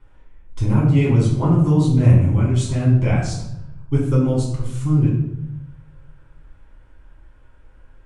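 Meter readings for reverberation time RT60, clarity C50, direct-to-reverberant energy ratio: 0.85 s, 3.5 dB, -6.0 dB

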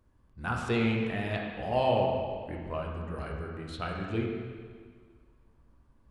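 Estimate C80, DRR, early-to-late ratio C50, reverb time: 3.5 dB, -1.0 dB, 1.5 dB, 1.8 s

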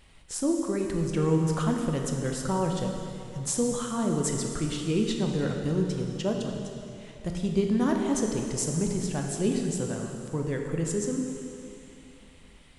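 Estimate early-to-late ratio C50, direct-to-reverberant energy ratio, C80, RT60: 3.0 dB, 1.5 dB, 4.0 dB, 2.7 s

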